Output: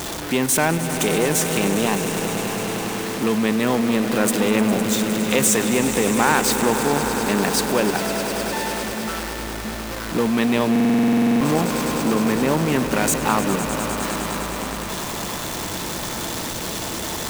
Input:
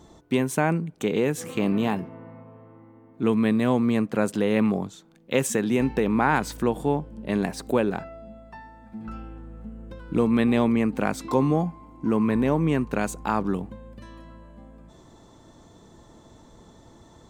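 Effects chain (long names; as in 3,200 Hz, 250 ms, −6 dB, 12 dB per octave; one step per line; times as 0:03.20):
converter with a step at zero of −28.5 dBFS
spectral tilt +2 dB per octave
in parallel at +2 dB: output level in coarse steps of 14 dB
on the sum: slack as between gear wheels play −35 dBFS
on a send: echo that builds up and dies away 102 ms, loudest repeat 5, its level −12.5 dB
on the sum: buffer that repeats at 0:10.71, samples 2,048, times 14
saturating transformer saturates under 750 Hz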